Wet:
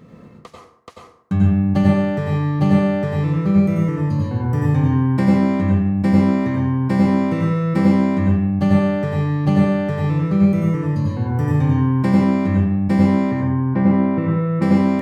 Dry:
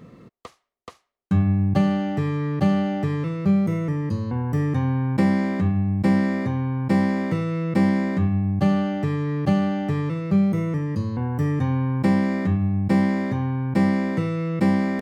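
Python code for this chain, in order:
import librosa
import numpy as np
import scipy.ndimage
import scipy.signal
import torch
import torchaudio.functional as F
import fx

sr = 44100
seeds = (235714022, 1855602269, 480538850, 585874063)

y = fx.lowpass(x, sr, hz=1900.0, slope=12, at=(13.31, 14.62))
y = fx.rev_plate(y, sr, seeds[0], rt60_s=0.67, hf_ratio=0.55, predelay_ms=80, drr_db=-2.5)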